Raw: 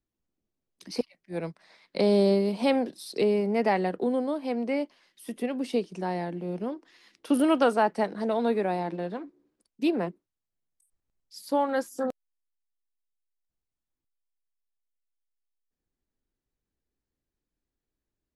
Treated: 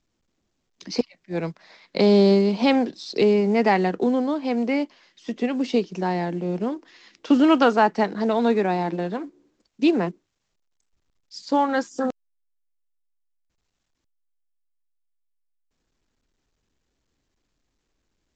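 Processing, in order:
dynamic equaliser 570 Hz, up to −6 dB, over −38 dBFS, Q 3.1
level +7 dB
mu-law 128 kbit/s 16,000 Hz

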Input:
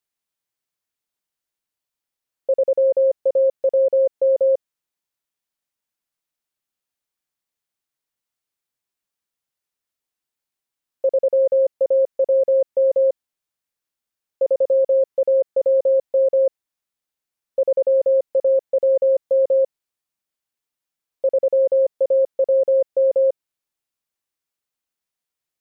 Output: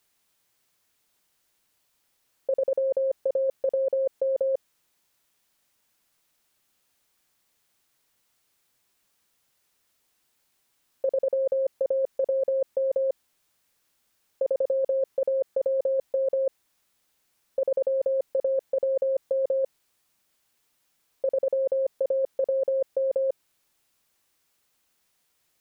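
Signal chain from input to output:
compressor whose output falls as the input rises −27 dBFS, ratio −1
level +3 dB

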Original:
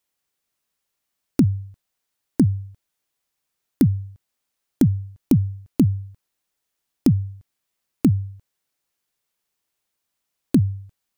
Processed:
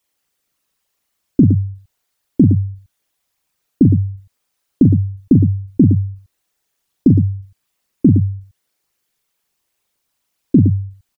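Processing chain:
spectral envelope exaggerated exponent 2
loudspeakers that aren't time-aligned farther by 14 metres −6 dB, 39 metres −8 dB
level +5.5 dB

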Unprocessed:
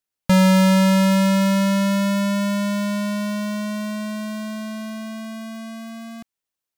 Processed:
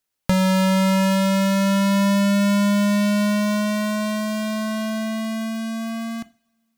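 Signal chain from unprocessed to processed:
downward compressor 4 to 1, threshold −25 dBFS, peak gain reduction 9 dB
convolution reverb, pre-delay 3 ms, DRR 13.5 dB
level +6 dB

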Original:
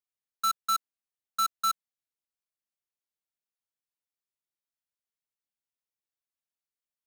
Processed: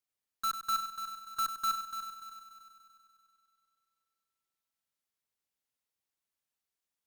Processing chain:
harmonic generator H 5 −9 dB, 8 −23 dB, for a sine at −24 dBFS
on a send: echo machine with several playback heads 97 ms, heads first and third, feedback 59%, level −10 dB
on the sum: level −6.5 dB

